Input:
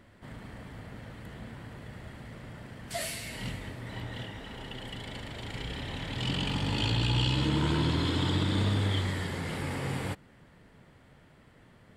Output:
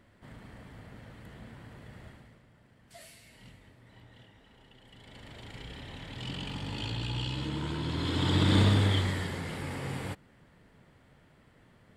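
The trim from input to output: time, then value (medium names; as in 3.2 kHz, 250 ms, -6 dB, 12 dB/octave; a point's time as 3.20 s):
2.07 s -4.5 dB
2.47 s -16.5 dB
4.83 s -16.5 dB
5.30 s -7 dB
7.81 s -7 dB
8.55 s +5.5 dB
9.54 s -3 dB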